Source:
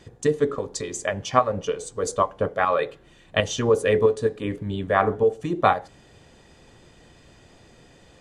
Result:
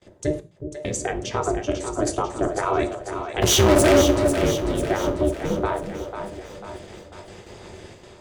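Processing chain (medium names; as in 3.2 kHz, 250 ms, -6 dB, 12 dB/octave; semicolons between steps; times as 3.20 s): octave divider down 1 oct, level -2 dB; 0.40–0.85 s: inverse Chebyshev band-stop 240–9400 Hz, stop band 80 dB; gate with hold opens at -41 dBFS; level rider gain up to 11 dB; peak limiter -12 dBFS, peak gain reduction 11 dB; 3.42–4.02 s: waveshaping leveller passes 5; resonant low shelf 160 Hz -11 dB, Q 3; ring modulator 150 Hz; two-band feedback delay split 490 Hz, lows 367 ms, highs 495 ms, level -8 dB; gated-style reverb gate 130 ms falling, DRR 10 dB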